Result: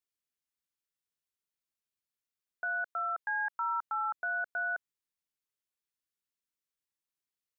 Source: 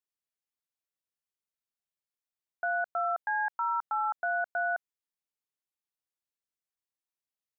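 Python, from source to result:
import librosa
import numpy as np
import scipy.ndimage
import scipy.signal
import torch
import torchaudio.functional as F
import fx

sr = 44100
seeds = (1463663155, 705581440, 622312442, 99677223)

y = fx.highpass(x, sr, hz=440.0, slope=12, at=(2.64, 3.54), fade=0.02)
y = fx.peak_eq(y, sr, hz=720.0, db=-10.0, octaves=0.65)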